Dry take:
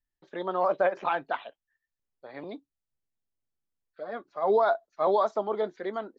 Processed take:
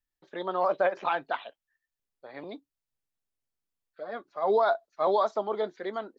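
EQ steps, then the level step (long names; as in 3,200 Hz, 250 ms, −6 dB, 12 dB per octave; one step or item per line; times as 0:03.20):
low-shelf EQ 350 Hz −3 dB
dynamic equaliser 4,200 Hz, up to +4 dB, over −55 dBFS, Q 1.5
0.0 dB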